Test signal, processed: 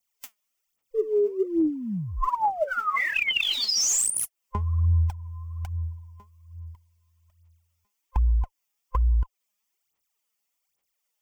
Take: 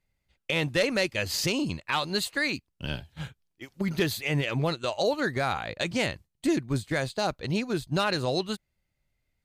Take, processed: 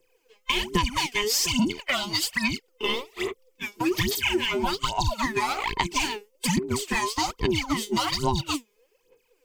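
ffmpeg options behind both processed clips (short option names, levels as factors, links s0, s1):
-filter_complex "[0:a]afftfilt=real='real(if(between(b,1,1008),(2*floor((b-1)/24)+1)*24-b,b),0)':imag='imag(if(between(b,1,1008),(2*floor((b-1)/24)+1)*24-b,b),0)*if(between(b,1,1008),-1,1)':win_size=2048:overlap=0.75,acrossover=split=410|3000[s0][s1][s2];[s1]acompressor=threshold=0.0224:ratio=10[s3];[s0][s3][s2]amix=inputs=3:normalize=0,tiltshelf=f=640:g=-5.5,aphaser=in_gain=1:out_gain=1:delay=4.9:decay=0.79:speed=1.2:type=sinusoidal,acompressor=threshold=0.0447:ratio=4,equalizer=f=1600:t=o:w=0.33:g=-8,equalizer=f=4000:t=o:w=0.33:g=-9,equalizer=f=10000:t=o:w=0.33:g=-5,volume=2"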